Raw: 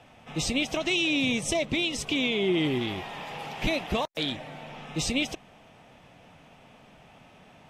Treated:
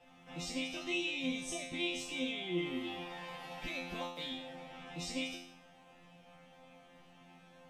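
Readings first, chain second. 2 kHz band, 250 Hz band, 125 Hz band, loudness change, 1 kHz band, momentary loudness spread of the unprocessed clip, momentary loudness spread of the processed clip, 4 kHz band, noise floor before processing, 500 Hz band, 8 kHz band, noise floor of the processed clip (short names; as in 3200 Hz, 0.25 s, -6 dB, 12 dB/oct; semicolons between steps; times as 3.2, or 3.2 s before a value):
-10.5 dB, -11.0 dB, -14.0 dB, -11.0 dB, -10.5 dB, 13 LU, 14 LU, -10.5 dB, -55 dBFS, -12.0 dB, -11.0 dB, -61 dBFS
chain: in parallel at +3 dB: compressor, threshold -36 dBFS, peak gain reduction 13.5 dB; on the sum: resonator bank F3 fifth, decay 0.66 s; gain +4.5 dB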